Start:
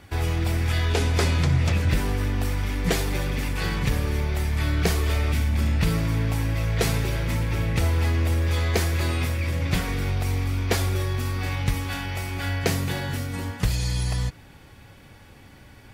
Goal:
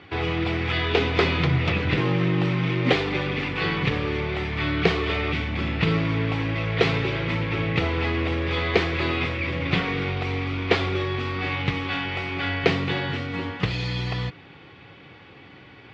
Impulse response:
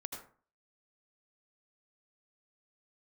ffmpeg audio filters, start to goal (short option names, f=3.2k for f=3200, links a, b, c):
-filter_complex "[0:a]asettb=1/sr,asplit=3[a][b][c];[a]atrim=end=1.974[d];[b]atrim=start=1.97:end=2.93,asetpts=PTS-STARTPTS,afade=t=in:d=0.004:c=qsin,afade=t=out:st=0.956:d=0.004:c=qsin,afreqshift=75[e];[c]atrim=start=2.926[f];[d][e]acrossfade=d=0.004:c1=hsin:c2=qsin[g];[g][f]acrossfade=d=0.004:c1=qsin:c2=hsin,highpass=180,equalizer=f=230:t=q:w=4:g=-9,equalizer=f=600:t=q:w=4:g=-7,equalizer=f=890:t=q:w=4:g=-5,equalizer=f=1.6k:t=q:w=4:g=-6,lowpass=f=3.5k:w=0.5412,lowpass=f=3.5k:w=1.3066,volume=7.5dB"